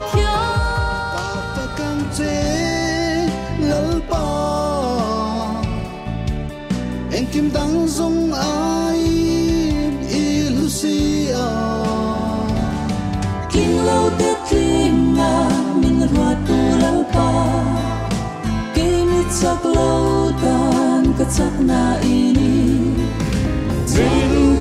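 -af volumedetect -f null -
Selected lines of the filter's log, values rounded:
mean_volume: -17.1 dB
max_volume: -3.6 dB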